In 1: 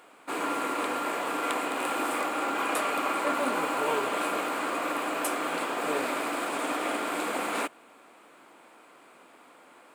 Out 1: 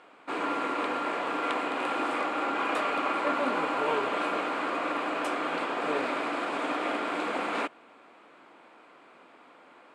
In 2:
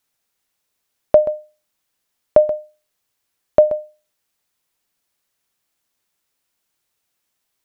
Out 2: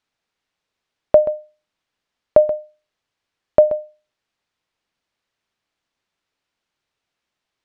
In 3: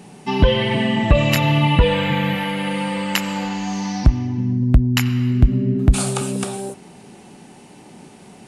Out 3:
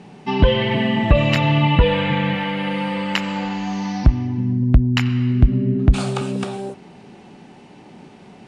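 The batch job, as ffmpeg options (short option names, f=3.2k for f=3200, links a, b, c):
-af "lowpass=4.2k"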